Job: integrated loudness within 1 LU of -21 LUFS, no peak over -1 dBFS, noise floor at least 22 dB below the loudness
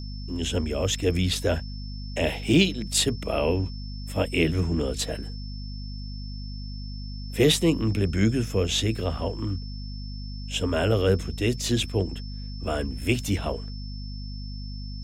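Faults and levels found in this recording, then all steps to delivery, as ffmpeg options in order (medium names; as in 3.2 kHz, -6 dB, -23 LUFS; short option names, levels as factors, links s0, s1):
hum 50 Hz; highest harmonic 250 Hz; hum level -32 dBFS; steady tone 5.3 kHz; tone level -44 dBFS; loudness -25.5 LUFS; peak level -8.0 dBFS; loudness target -21.0 LUFS
-> -af "bandreject=f=50:t=h:w=6,bandreject=f=100:t=h:w=6,bandreject=f=150:t=h:w=6,bandreject=f=200:t=h:w=6,bandreject=f=250:t=h:w=6"
-af "bandreject=f=5300:w=30"
-af "volume=1.68"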